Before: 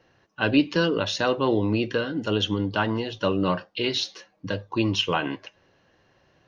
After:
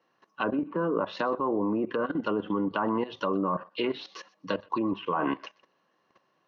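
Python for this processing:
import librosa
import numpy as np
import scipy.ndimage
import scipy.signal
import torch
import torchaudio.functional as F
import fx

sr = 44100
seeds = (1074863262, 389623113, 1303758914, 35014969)

y = fx.env_lowpass_down(x, sr, base_hz=1400.0, full_db=-20.0)
y = scipy.signal.sosfilt(scipy.signal.butter(4, 170.0, 'highpass', fs=sr, output='sos'), y)
y = fx.env_lowpass_down(y, sr, base_hz=1400.0, full_db=-21.0)
y = fx.peak_eq(y, sr, hz=1100.0, db=11.0, octaves=0.43)
y = fx.notch(y, sr, hz=1600.0, q=22.0)
y = fx.level_steps(y, sr, step_db=15)
y = fx.echo_thinned(y, sr, ms=125, feedback_pct=16, hz=960.0, wet_db=-22.5)
y = y * 10.0 ** (3.0 / 20.0)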